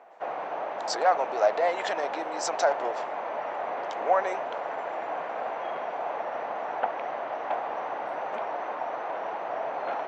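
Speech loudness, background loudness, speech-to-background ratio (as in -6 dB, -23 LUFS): -28.0 LUFS, -33.0 LUFS, 5.0 dB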